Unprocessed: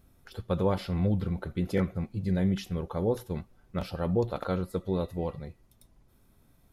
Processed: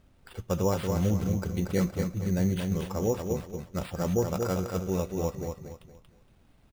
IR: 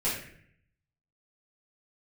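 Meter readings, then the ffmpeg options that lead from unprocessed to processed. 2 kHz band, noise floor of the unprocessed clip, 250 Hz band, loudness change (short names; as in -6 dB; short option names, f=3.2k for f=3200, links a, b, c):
+1.0 dB, -63 dBFS, +1.0 dB, +1.0 dB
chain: -af "aecho=1:1:233|466|699|932:0.562|0.174|0.054|0.0168,acrusher=samples=7:mix=1:aa=0.000001"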